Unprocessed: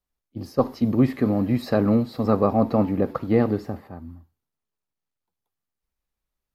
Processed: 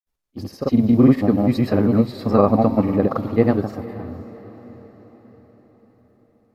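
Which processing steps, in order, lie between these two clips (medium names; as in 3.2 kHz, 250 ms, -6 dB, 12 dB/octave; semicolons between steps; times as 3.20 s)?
granulator, pitch spread up and down by 0 st; echo that smears into a reverb 513 ms, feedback 51%, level -16 dB; trim +5 dB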